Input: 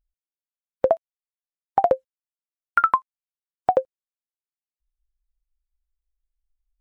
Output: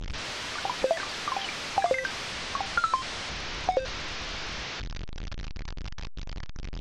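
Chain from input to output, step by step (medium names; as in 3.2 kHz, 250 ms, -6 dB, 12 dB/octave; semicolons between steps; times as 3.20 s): one-bit delta coder 32 kbps, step -21 dBFS; ever faster or slower copies 90 ms, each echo +7 st, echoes 3, each echo -6 dB; distance through air 67 m; trim -7 dB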